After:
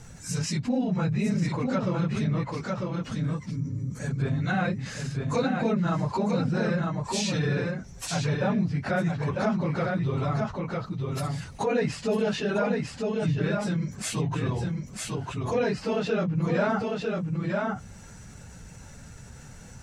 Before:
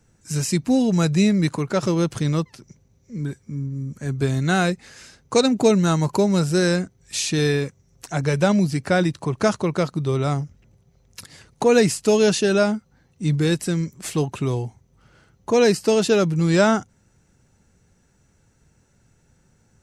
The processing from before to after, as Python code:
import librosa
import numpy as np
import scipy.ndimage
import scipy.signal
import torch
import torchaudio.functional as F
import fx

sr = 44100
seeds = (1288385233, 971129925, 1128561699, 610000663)

y = fx.phase_scramble(x, sr, seeds[0], window_ms=50)
y = fx.env_lowpass_down(y, sr, base_hz=2300.0, full_db=-16.5)
y = fx.peak_eq(y, sr, hz=350.0, db=-8.0, octaves=0.64)
y = y + 10.0 ** (-6.0 / 20.0) * np.pad(y, (int(950 * sr / 1000.0), 0))[:len(y)]
y = fx.env_flatten(y, sr, amount_pct=50)
y = y * 10.0 ** (-8.5 / 20.0)